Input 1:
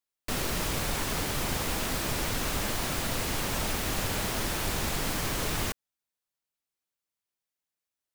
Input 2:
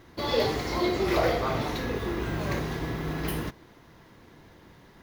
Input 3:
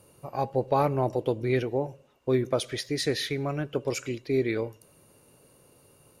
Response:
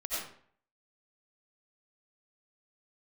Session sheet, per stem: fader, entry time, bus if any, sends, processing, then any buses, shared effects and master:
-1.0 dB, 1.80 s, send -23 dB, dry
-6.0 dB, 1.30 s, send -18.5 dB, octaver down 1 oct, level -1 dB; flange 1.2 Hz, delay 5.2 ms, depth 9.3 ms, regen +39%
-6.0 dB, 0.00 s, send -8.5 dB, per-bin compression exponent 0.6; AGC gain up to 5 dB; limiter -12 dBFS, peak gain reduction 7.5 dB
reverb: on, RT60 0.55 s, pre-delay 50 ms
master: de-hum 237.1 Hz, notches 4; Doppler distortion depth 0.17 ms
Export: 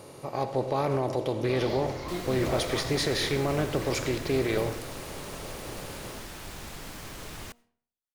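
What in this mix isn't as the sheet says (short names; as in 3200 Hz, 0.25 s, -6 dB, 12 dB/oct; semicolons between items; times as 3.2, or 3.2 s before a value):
stem 1 -1.0 dB -> -10.5 dB; reverb return -7.5 dB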